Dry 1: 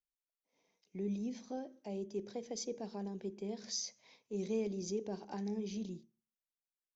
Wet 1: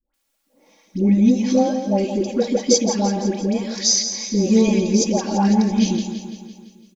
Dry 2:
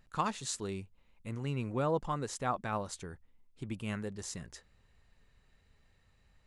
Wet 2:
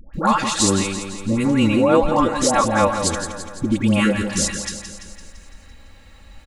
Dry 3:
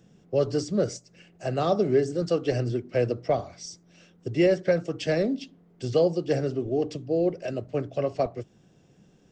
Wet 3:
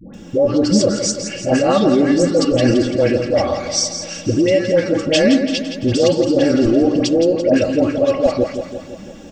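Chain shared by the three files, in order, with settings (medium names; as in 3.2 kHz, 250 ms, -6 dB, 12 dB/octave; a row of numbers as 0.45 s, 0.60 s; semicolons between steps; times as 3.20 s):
comb 3.6 ms, depth 75%; compression, threshold -25 dBFS; peak limiter -27.5 dBFS; phase dispersion highs, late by 140 ms, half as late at 870 Hz; on a send: feedback delay 169 ms, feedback 57%, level -9 dB; on the sum: peak normalisation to -1.5 dBFS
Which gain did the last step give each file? +21.5 dB, +20.0 dB, +20.5 dB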